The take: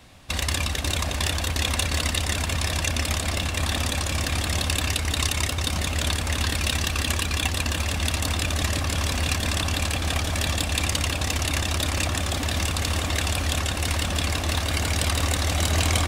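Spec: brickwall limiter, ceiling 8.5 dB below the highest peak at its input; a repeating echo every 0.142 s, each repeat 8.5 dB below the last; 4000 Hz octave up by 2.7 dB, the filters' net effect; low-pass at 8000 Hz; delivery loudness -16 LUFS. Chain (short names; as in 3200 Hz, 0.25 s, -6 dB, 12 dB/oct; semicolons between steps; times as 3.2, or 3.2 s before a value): LPF 8000 Hz; bell 4000 Hz +3.5 dB; limiter -15.5 dBFS; feedback echo 0.142 s, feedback 38%, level -8.5 dB; gain +9.5 dB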